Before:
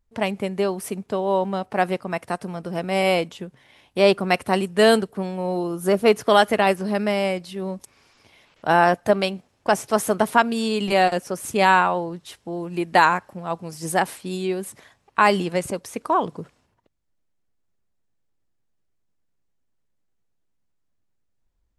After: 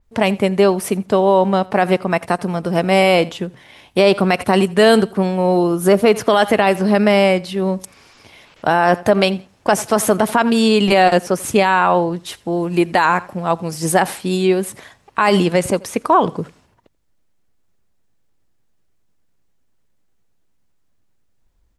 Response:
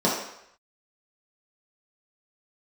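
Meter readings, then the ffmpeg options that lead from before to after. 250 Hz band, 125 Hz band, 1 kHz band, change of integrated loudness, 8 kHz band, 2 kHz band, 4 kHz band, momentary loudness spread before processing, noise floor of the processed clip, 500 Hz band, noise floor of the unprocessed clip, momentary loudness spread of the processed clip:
+8.5 dB, +8.5 dB, +4.0 dB, +6.0 dB, +7.0 dB, +4.0 dB, +5.5 dB, 14 LU, −60 dBFS, +6.5 dB, −71 dBFS, 9 LU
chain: -af "aecho=1:1:85|170:0.0631|0.0145,alimiter=level_in=12dB:limit=-1dB:release=50:level=0:latency=1,adynamicequalizer=threshold=0.0224:dfrequency=5100:dqfactor=0.7:tfrequency=5100:tqfactor=0.7:attack=5:release=100:ratio=0.375:range=2:mode=cutabove:tftype=highshelf,volume=-2dB"

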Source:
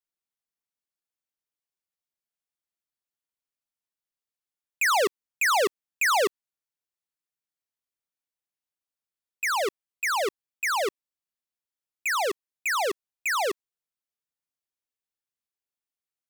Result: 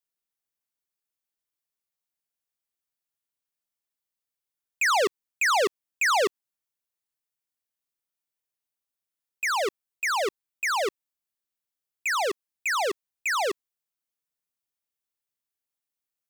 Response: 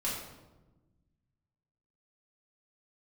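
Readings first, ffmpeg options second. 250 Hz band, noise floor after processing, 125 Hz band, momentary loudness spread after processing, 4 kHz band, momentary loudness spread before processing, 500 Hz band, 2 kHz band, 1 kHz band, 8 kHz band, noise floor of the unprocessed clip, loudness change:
0.0 dB, below −85 dBFS, can't be measured, 9 LU, +0.5 dB, 9 LU, 0.0 dB, 0.0 dB, 0.0 dB, −1.0 dB, below −85 dBFS, 0.0 dB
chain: -filter_complex "[0:a]acrossover=split=8100[link_01][link_02];[link_02]acompressor=threshold=-47dB:ratio=4:attack=1:release=60[link_03];[link_01][link_03]amix=inputs=2:normalize=0,highshelf=frequency=9600:gain=6"

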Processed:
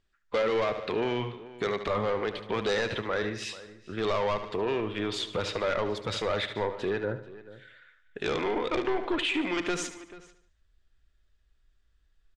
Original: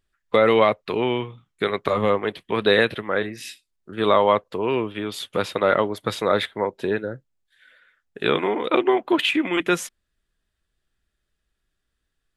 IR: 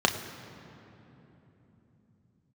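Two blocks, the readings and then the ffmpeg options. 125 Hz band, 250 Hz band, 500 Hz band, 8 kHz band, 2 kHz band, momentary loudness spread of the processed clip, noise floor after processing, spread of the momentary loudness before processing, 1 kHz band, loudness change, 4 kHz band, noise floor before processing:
−5.0 dB, −8.0 dB, −8.0 dB, −3.0 dB, −7.5 dB, 10 LU, −68 dBFS, 11 LU, −9.0 dB, −8.5 dB, −6.5 dB, −77 dBFS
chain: -filter_complex "[0:a]asoftclip=type=tanh:threshold=-17.5dB,lowpass=frequency=7400:width=0.5412,lowpass=frequency=7400:width=1.3066,asplit=2[link_01][link_02];[link_02]aecho=0:1:73|146|219|292:0.224|0.0985|0.0433|0.0191[link_03];[link_01][link_03]amix=inputs=2:normalize=0,asubboost=boost=3.5:cutoff=84,alimiter=limit=-21.5dB:level=0:latency=1:release=69,asplit=2[link_04][link_05];[link_05]adelay=437.3,volume=-17dB,highshelf=frequency=4000:gain=-9.84[link_06];[link_04][link_06]amix=inputs=2:normalize=0"

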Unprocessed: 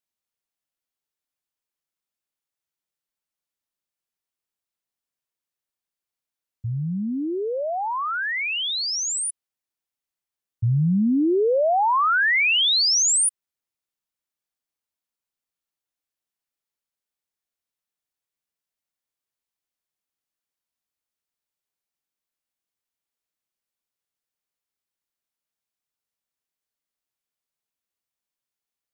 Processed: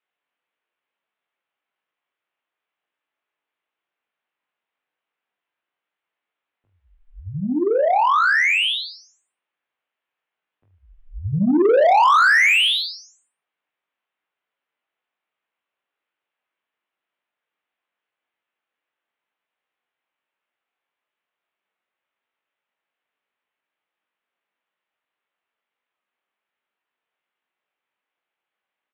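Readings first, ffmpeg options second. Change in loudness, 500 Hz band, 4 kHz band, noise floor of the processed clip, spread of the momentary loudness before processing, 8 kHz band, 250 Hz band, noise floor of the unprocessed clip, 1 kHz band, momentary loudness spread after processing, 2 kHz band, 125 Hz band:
+4.5 dB, +4.0 dB, −0.5 dB, below −85 dBFS, 11 LU, −17.0 dB, +0.5 dB, below −85 dBFS, +5.5 dB, 16 LU, +5.5 dB, −5.0 dB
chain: -filter_complex "[0:a]highpass=frequency=190:poles=1,highpass=frequency=350:width_type=q:width=0.5412,highpass=frequency=350:width_type=q:width=1.307,lowpass=frequency=3400:width_type=q:width=0.5176,lowpass=frequency=3400:width_type=q:width=0.7071,lowpass=frequency=3400:width_type=q:width=1.932,afreqshift=-220,aecho=1:1:20|44|72.8|107.4|148.8:0.631|0.398|0.251|0.158|0.1,asplit=2[link_01][link_02];[link_02]highpass=frequency=720:poles=1,volume=18dB,asoftclip=type=tanh:threshold=-7.5dB[link_03];[link_01][link_03]amix=inputs=2:normalize=0,lowpass=frequency=2500:poles=1,volume=-6dB"

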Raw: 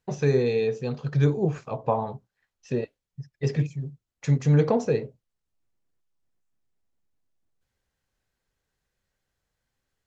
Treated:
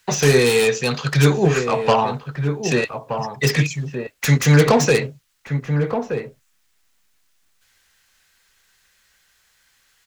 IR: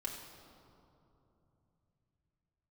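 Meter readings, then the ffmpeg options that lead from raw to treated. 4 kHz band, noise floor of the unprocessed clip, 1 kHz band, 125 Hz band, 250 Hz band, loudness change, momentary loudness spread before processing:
+20.0 dB, −85 dBFS, +11.5 dB, +6.5 dB, +7.0 dB, +7.0 dB, 18 LU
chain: -filter_complex "[0:a]equalizer=frequency=110:width_type=o:width=0.24:gain=-5.5,acrossover=split=120|1200[link_01][link_02][link_03];[link_03]aeval=exprs='0.0562*sin(PI/2*5.01*val(0)/0.0562)':channel_layout=same[link_04];[link_01][link_02][link_04]amix=inputs=3:normalize=0,asplit=2[link_05][link_06];[link_06]adelay=1224,volume=-7dB,highshelf=frequency=4000:gain=-27.6[link_07];[link_05][link_07]amix=inputs=2:normalize=0,volume=6.5dB"

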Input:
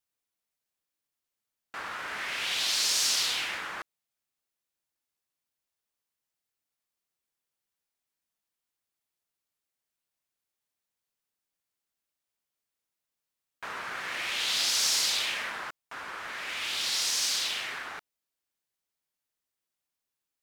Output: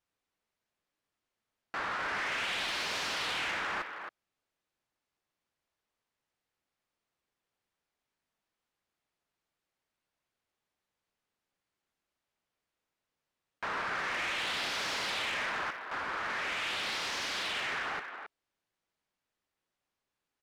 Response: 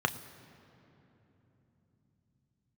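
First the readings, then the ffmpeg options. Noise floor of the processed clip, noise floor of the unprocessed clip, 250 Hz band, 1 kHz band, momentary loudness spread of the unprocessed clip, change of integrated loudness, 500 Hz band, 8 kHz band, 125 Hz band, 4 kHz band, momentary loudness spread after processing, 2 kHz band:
below −85 dBFS, below −85 dBFS, +4.0 dB, +3.5 dB, 17 LU, −5.5 dB, +4.0 dB, −15.0 dB, can't be measured, −7.5 dB, 8 LU, +0.5 dB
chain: -filter_complex "[0:a]acrossover=split=3000[link_01][link_02];[link_02]acompressor=threshold=-38dB:ratio=4:attack=1:release=60[link_03];[link_01][link_03]amix=inputs=2:normalize=0,aemphasis=mode=reproduction:type=75fm,asplit=2[link_04][link_05];[link_05]alimiter=level_in=6dB:limit=-24dB:level=0:latency=1,volume=-6dB,volume=0.5dB[link_06];[link_04][link_06]amix=inputs=2:normalize=0,asplit=2[link_07][link_08];[link_08]adelay=270,highpass=300,lowpass=3400,asoftclip=type=hard:threshold=-27dB,volume=-9dB[link_09];[link_07][link_09]amix=inputs=2:normalize=0,asoftclip=type=tanh:threshold=-29dB"

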